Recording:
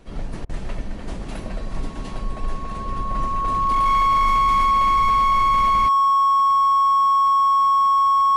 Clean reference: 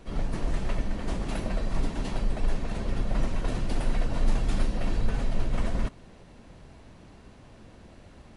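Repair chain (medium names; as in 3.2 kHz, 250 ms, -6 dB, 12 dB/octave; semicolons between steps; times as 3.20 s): clip repair -14 dBFS; band-stop 1.1 kHz, Q 30; interpolate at 0.45 s, 42 ms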